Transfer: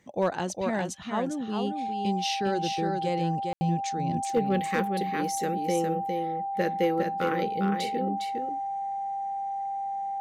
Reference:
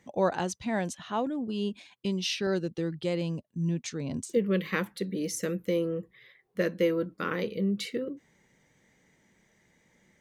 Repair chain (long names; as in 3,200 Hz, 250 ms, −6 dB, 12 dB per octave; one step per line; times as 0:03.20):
clipped peaks rebuilt −16.5 dBFS
notch filter 790 Hz, Q 30
ambience match 0:03.53–0:03.61
echo removal 407 ms −5 dB